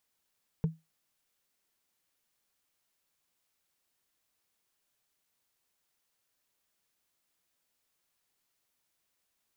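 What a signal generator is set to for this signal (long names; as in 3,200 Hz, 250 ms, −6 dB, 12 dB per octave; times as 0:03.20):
struck wood, lowest mode 161 Hz, decay 0.21 s, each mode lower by 11 dB, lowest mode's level −21 dB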